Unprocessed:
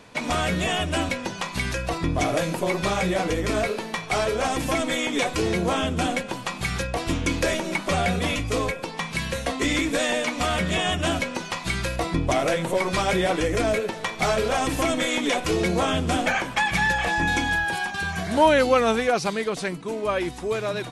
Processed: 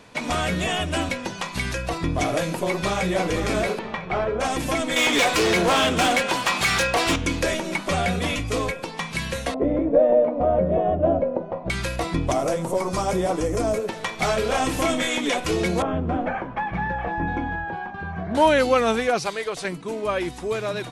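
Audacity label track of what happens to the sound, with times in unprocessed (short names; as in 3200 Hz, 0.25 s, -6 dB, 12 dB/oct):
2.630000	3.240000	echo throw 0.5 s, feedback 45%, level -7.5 dB
3.780000	4.390000	LPF 3300 Hz -> 1400 Hz
4.960000	7.160000	overdrive pedal drive 20 dB, tone 7500 Hz, clips at -12 dBFS
9.540000	11.700000	synth low-pass 590 Hz, resonance Q 4.1
12.320000	13.880000	band shelf 2500 Hz -10 dB
14.460000	15.170000	doubler 27 ms -7 dB
15.820000	18.350000	LPF 1100 Hz
19.230000	19.650000	bell 220 Hz -13 dB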